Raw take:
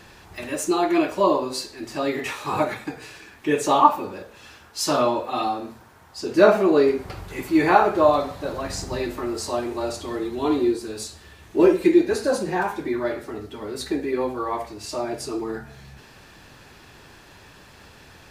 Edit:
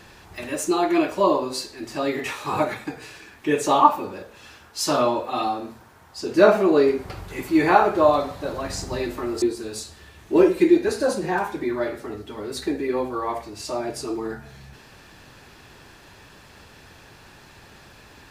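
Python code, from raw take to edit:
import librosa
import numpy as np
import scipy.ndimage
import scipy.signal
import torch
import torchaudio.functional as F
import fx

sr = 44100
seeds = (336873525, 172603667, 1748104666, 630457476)

y = fx.edit(x, sr, fx.cut(start_s=9.42, length_s=1.24), tone=tone)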